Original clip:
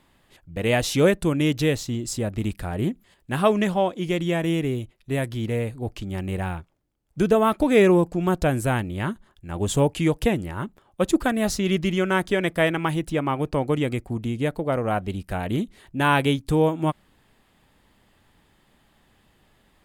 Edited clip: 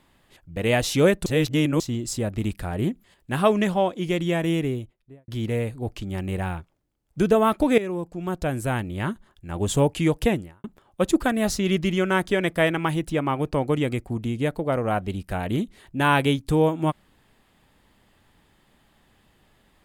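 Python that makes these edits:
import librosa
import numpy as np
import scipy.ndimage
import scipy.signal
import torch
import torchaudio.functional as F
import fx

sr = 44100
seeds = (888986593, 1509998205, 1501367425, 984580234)

y = fx.studio_fade_out(x, sr, start_s=4.57, length_s=0.71)
y = fx.edit(y, sr, fx.reverse_span(start_s=1.26, length_s=0.54),
    fx.fade_in_from(start_s=7.78, length_s=1.32, floor_db=-16.0),
    fx.fade_out_span(start_s=10.34, length_s=0.3, curve='qua'), tone=tone)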